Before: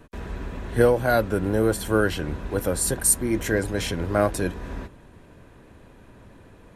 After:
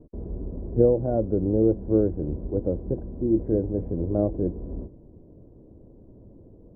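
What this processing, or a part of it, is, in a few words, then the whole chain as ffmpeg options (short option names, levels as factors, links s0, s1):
under water: -af "lowpass=f=560:w=0.5412,lowpass=f=560:w=1.3066,equalizer=f=330:t=o:w=0.24:g=4"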